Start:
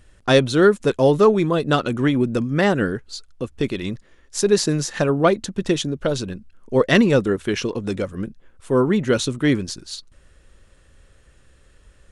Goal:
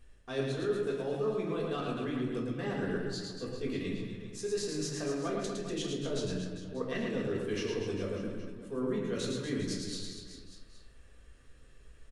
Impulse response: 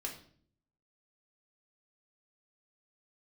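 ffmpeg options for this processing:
-filter_complex "[0:a]areverse,acompressor=threshold=0.0501:ratio=6,areverse,aecho=1:1:110|242|400.4|590.5|818.6:0.631|0.398|0.251|0.158|0.1[s0];[1:a]atrim=start_sample=2205[s1];[s0][s1]afir=irnorm=-1:irlink=0,volume=0.422"

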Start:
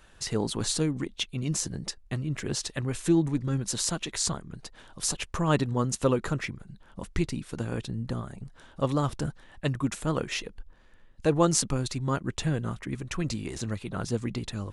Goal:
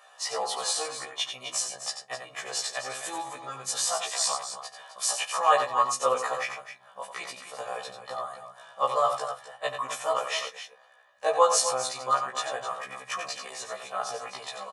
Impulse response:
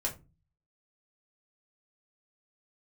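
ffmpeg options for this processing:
-filter_complex "[0:a]highpass=f=800:t=q:w=4.9,aecho=1:1:1.7:0.68,aecho=1:1:90.38|259.5:0.398|0.282,asplit=2[s0][s1];[1:a]atrim=start_sample=2205[s2];[s1][s2]afir=irnorm=-1:irlink=0,volume=0.299[s3];[s0][s3]amix=inputs=2:normalize=0,afftfilt=real='re*1.73*eq(mod(b,3),0)':imag='im*1.73*eq(mod(b,3),0)':win_size=2048:overlap=0.75"

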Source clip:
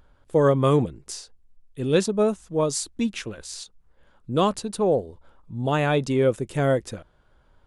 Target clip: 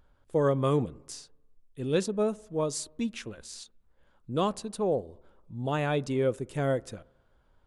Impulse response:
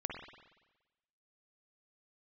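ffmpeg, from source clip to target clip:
-filter_complex "[0:a]asplit=2[s0][s1];[1:a]atrim=start_sample=2205,lowpass=1500[s2];[s1][s2]afir=irnorm=-1:irlink=0,volume=0.0891[s3];[s0][s3]amix=inputs=2:normalize=0,volume=0.447"

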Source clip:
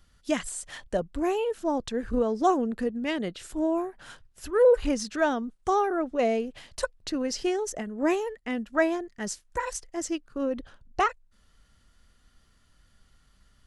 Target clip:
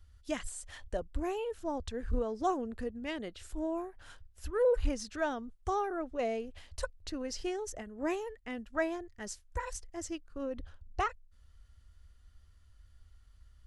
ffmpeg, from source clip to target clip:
-af "lowshelf=f=110:t=q:w=3:g=10,volume=0.398"

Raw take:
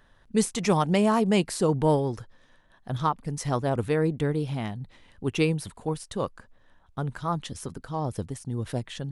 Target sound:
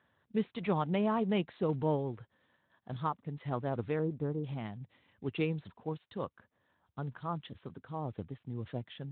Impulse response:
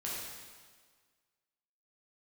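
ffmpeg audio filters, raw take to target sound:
-filter_complex "[0:a]asplit=3[s0][s1][s2];[s0]afade=t=out:st=1.61:d=0.02[s3];[s1]adynamicequalizer=threshold=0.0158:dfrequency=980:dqfactor=1.9:tfrequency=980:tqfactor=1.9:attack=5:release=100:ratio=0.375:range=1.5:mode=cutabove:tftype=bell,afade=t=in:st=1.61:d=0.02,afade=t=out:st=2.2:d=0.02[s4];[s2]afade=t=in:st=2.2:d=0.02[s5];[s3][s4][s5]amix=inputs=3:normalize=0,asettb=1/sr,asplit=3[s6][s7][s8];[s6]atrim=end=3.994[s9];[s7]atrim=start=3.99:end=4.44,asetpts=PTS-STARTPTS,afade=t=in:d=0.004:c=qsin,afade=t=out:st=0.446:d=0.004:c=qsin,lowpass=f=1300:w=0.5412,lowpass=f=1300:w=1.3066[s10];[s8]atrim=start=4.436[s11];[s9][s10]acrossfade=d=0.004:c1=hsin:c2=qsin[s12];[s12][s11]acrossfade=d=0.004:c1=qsin:c2=hsin,volume=0.355" -ar 8000 -c:a libspeex -b:a 18k

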